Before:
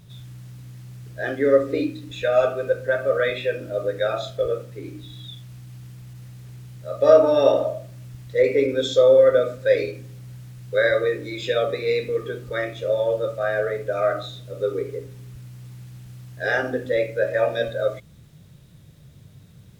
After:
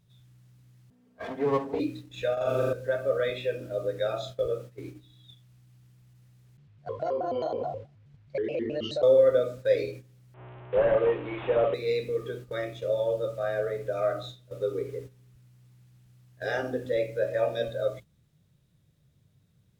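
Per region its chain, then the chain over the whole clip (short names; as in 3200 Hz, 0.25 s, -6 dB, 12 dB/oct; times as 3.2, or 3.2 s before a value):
0.9–1.8 minimum comb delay 4.4 ms + HPF 110 Hz + high shelf 2700 Hz -11 dB
2.33–2.73 negative-ratio compressor -24 dBFS + flutter echo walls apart 6.8 m, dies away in 1.3 s
6.57–9.03 LPF 3600 Hz + compressor, threshold -21 dBFS + shaped vibrato square 4.7 Hz, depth 250 cents
10.34–11.74 delta modulation 16 kbps, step -31 dBFS + bell 840 Hz +7 dB 1.8 oct
whole clip: gate -35 dBFS, range -12 dB; dynamic EQ 1700 Hz, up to -6 dB, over -39 dBFS, Q 1.3; gain -5 dB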